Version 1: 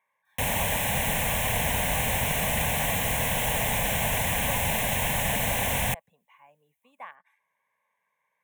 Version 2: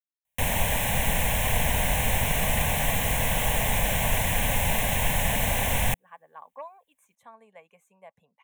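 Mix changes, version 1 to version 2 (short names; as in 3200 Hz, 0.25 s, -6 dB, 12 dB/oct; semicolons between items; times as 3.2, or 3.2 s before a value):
speech: entry +2.10 s; master: remove HPF 85 Hz 6 dB/oct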